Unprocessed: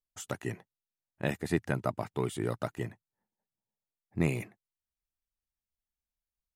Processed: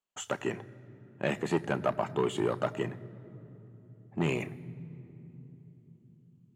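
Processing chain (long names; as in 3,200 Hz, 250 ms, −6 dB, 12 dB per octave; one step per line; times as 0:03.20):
soft clipping −25.5 dBFS, distortion −9 dB
low-shelf EQ 78 Hz −11.5 dB
convolution reverb RT60 3.5 s, pre-delay 3 ms, DRR 14.5 dB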